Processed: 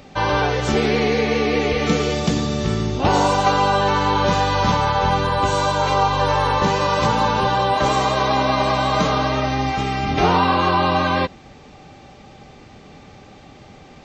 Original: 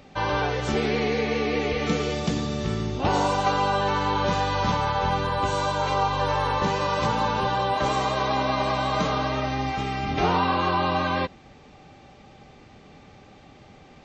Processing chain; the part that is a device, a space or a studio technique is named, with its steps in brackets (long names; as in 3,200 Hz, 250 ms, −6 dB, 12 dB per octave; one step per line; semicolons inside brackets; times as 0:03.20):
exciter from parts (in parallel at −9.5 dB: high-pass filter 3,500 Hz 12 dB per octave + soft clipping −36.5 dBFS, distortion −14 dB)
on the sum: level +6 dB